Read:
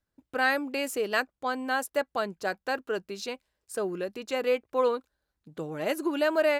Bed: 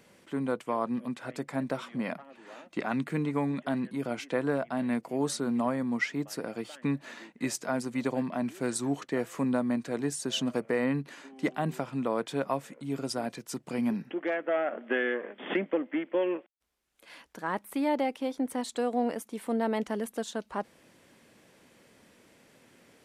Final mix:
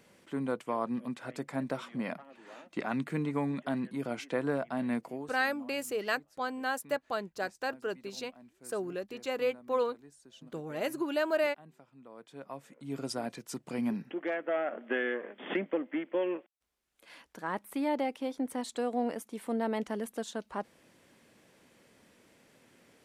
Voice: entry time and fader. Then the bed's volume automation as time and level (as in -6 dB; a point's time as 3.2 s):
4.95 s, -4.5 dB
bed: 5.08 s -2.5 dB
5.38 s -24.5 dB
11.97 s -24.5 dB
13 s -3 dB